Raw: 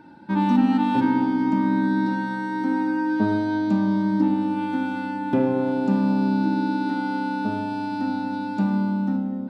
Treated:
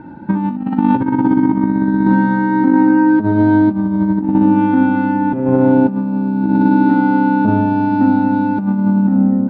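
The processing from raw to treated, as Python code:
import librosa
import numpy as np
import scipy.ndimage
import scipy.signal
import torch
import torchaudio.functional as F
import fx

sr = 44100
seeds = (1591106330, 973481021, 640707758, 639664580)

y = scipy.signal.sosfilt(scipy.signal.butter(2, 1800.0, 'lowpass', fs=sr, output='sos'), x)
y = fx.low_shelf(y, sr, hz=190.0, db=10.0)
y = fx.over_compress(y, sr, threshold_db=-20.0, ratio=-0.5)
y = y * librosa.db_to_amplitude(8.0)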